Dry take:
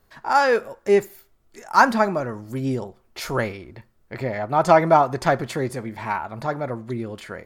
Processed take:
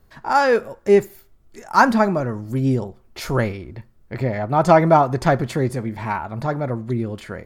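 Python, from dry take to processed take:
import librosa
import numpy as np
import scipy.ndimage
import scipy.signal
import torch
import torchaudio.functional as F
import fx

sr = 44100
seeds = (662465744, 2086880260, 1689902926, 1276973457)

y = fx.low_shelf(x, sr, hz=290.0, db=9.0)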